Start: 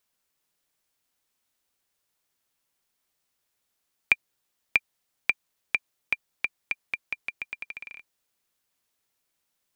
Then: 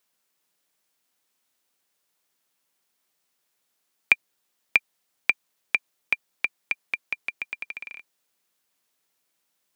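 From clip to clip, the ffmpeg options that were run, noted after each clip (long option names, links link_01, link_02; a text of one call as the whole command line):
ffmpeg -i in.wav -af "highpass=150,volume=3dB" out.wav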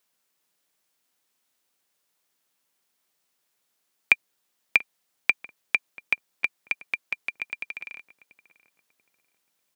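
ffmpeg -i in.wav -filter_complex "[0:a]asplit=2[link_01][link_02];[link_02]adelay=687,lowpass=frequency=1200:poles=1,volume=-17dB,asplit=2[link_03][link_04];[link_04]adelay=687,lowpass=frequency=1200:poles=1,volume=0.39,asplit=2[link_05][link_06];[link_06]adelay=687,lowpass=frequency=1200:poles=1,volume=0.39[link_07];[link_01][link_03][link_05][link_07]amix=inputs=4:normalize=0" out.wav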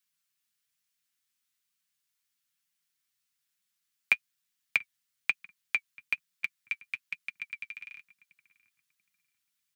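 ffmpeg -i in.wav -filter_complex "[0:a]flanger=delay=5.3:depth=3.5:regen=36:speed=1.1:shape=sinusoidal,acrossover=split=220|1200[link_01][link_02][link_03];[link_02]acrusher=bits=4:mix=0:aa=0.000001[link_04];[link_01][link_04][link_03]amix=inputs=3:normalize=0,volume=-2dB" out.wav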